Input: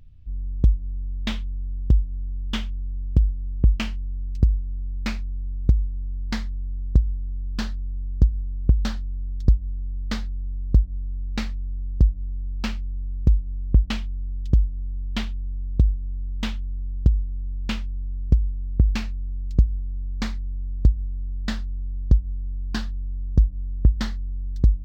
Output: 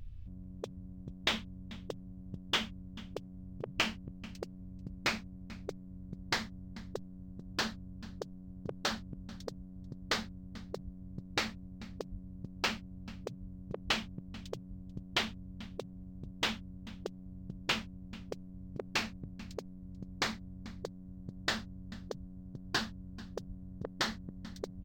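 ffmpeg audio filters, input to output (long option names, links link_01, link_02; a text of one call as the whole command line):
ffmpeg -i in.wav -af "aecho=1:1:439:0.0841,afftfilt=real='re*lt(hypot(re,im),0.2)':imag='im*lt(hypot(re,im),0.2)':win_size=1024:overlap=0.75,volume=1.5dB" out.wav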